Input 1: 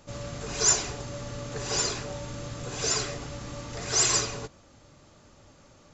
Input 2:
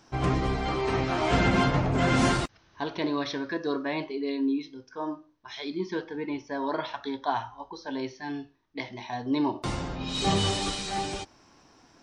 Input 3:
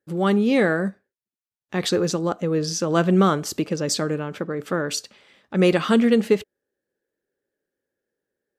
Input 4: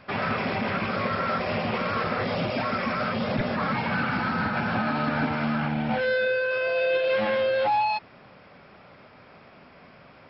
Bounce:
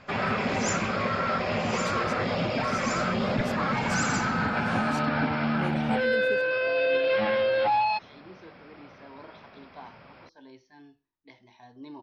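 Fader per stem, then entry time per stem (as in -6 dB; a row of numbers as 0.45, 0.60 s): -12.0, -17.5, -18.5, -0.5 dB; 0.00, 2.50, 0.00, 0.00 s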